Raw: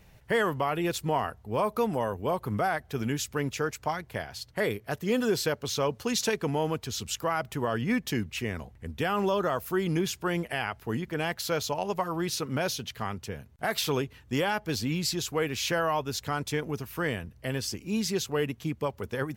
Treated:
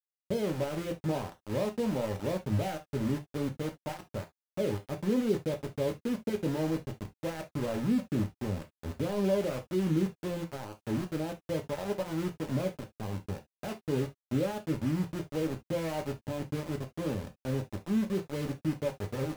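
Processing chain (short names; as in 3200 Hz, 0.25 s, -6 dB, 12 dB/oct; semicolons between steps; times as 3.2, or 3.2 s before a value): Gaussian blur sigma 14 samples; sample gate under -36.5 dBFS; non-linear reverb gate 90 ms falling, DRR 3.5 dB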